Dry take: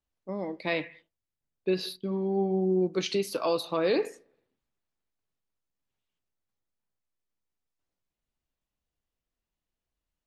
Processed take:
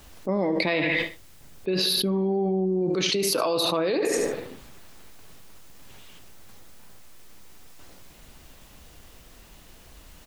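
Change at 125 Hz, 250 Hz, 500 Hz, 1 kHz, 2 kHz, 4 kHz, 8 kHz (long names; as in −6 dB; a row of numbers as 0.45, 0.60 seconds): +4.5, +4.5, +3.5, +4.5, +9.0, +11.5, +14.0 decibels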